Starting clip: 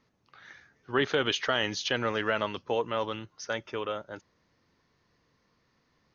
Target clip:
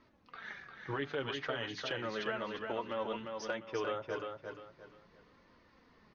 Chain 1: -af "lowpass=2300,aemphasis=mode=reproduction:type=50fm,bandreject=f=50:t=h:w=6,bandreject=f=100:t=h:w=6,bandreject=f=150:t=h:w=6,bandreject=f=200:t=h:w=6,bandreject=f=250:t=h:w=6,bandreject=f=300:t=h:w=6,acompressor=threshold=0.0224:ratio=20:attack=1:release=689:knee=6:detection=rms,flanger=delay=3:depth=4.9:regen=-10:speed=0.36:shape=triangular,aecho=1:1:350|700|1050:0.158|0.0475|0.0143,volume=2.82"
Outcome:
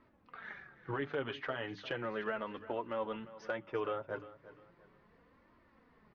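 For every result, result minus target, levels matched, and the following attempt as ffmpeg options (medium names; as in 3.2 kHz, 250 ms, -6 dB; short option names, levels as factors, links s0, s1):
echo-to-direct -11 dB; 4 kHz band -5.5 dB
-af "lowpass=2300,aemphasis=mode=reproduction:type=50fm,bandreject=f=50:t=h:w=6,bandreject=f=100:t=h:w=6,bandreject=f=150:t=h:w=6,bandreject=f=200:t=h:w=6,bandreject=f=250:t=h:w=6,bandreject=f=300:t=h:w=6,acompressor=threshold=0.0224:ratio=20:attack=1:release=689:knee=6:detection=rms,flanger=delay=3:depth=4.9:regen=-10:speed=0.36:shape=triangular,aecho=1:1:350|700|1050|1400:0.562|0.169|0.0506|0.0152,volume=2.82"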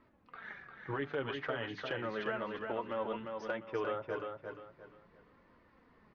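4 kHz band -5.5 dB
-af "lowpass=5600,aemphasis=mode=reproduction:type=50fm,bandreject=f=50:t=h:w=6,bandreject=f=100:t=h:w=6,bandreject=f=150:t=h:w=6,bandreject=f=200:t=h:w=6,bandreject=f=250:t=h:w=6,bandreject=f=300:t=h:w=6,acompressor=threshold=0.0224:ratio=20:attack=1:release=689:knee=6:detection=rms,flanger=delay=3:depth=4.9:regen=-10:speed=0.36:shape=triangular,aecho=1:1:350|700|1050|1400:0.562|0.169|0.0506|0.0152,volume=2.82"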